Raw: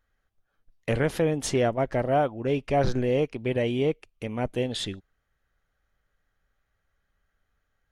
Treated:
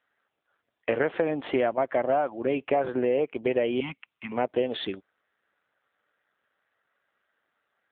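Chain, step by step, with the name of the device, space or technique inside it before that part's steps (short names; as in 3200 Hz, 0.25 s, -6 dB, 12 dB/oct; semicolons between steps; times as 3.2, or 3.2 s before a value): 1.22–2.6 dynamic EQ 450 Hz, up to -7 dB, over -40 dBFS, Q 4.4; 3.8–4.32 elliptic band-stop 260–860 Hz, stop band 40 dB; voicemail (BPF 360–2700 Hz; compressor 8:1, threshold -28 dBFS, peak gain reduction 9 dB; gain +8 dB; AMR-NB 7.4 kbps 8000 Hz)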